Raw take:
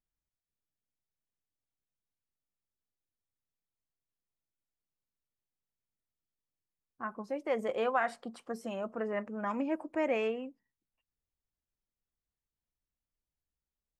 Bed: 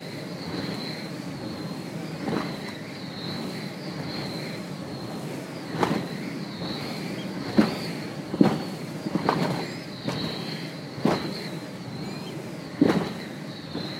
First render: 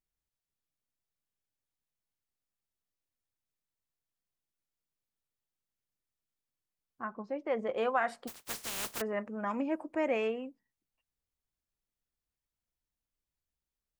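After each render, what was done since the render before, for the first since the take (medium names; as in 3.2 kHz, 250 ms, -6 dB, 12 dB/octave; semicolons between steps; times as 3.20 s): 7.05–7.77 s: distance through air 170 m; 8.27–9.00 s: spectral contrast reduction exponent 0.13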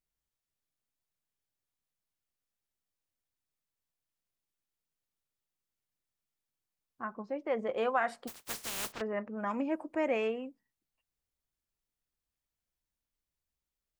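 8.92–9.37 s: distance through air 160 m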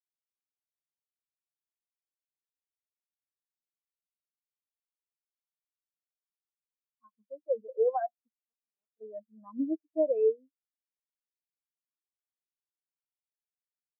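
spectral contrast expander 4:1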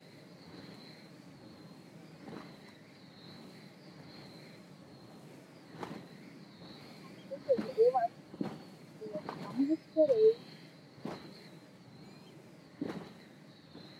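add bed -19.5 dB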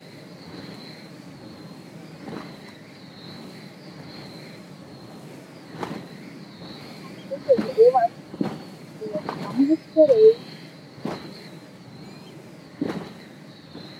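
trim +12 dB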